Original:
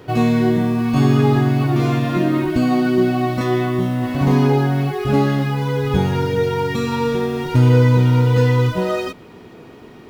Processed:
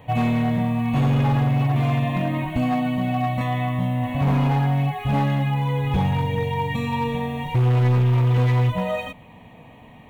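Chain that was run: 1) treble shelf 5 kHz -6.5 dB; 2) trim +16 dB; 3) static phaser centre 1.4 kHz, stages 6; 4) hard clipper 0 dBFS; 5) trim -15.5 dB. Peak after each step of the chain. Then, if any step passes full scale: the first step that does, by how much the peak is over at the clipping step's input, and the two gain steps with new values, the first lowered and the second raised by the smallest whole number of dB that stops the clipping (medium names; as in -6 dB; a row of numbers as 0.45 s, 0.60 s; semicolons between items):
-3.5 dBFS, +12.5 dBFS, +9.0 dBFS, 0.0 dBFS, -15.5 dBFS; step 2, 9.0 dB; step 2 +7 dB, step 5 -6.5 dB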